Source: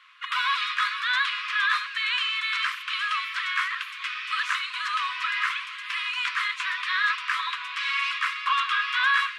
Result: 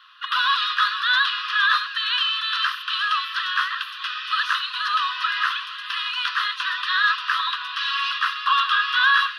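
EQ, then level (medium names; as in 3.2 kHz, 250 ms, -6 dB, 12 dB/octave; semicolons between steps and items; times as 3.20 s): high-pass 1 kHz; static phaser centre 2.2 kHz, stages 6; +7.5 dB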